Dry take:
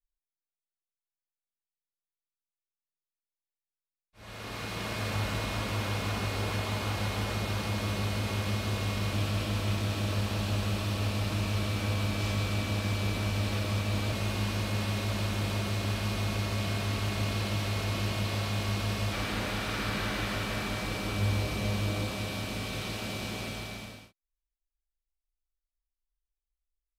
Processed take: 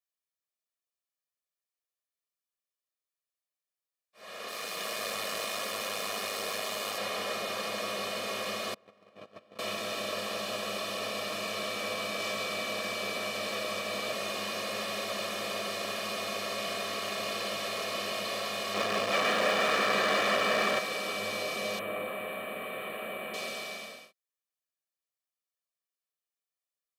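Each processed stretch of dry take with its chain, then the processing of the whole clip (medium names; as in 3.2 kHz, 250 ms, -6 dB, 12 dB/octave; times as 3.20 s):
4.48–6.98 s: partial rectifier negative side -7 dB + treble shelf 5.4 kHz +9 dB
8.74–9.59 s: low-pass 1 kHz 6 dB/octave + gate -28 dBFS, range -25 dB
18.74–20.79 s: treble shelf 3.7 kHz -10.5 dB + waveshaping leveller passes 3
21.79–23.34 s: Butterworth band-stop 5.5 kHz, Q 0.65 + peaking EQ 6 kHz -12.5 dB 0.21 oct
whole clip: high-pass 250 Hz 24 dB/octave; comb 1.7 ms, depth 68%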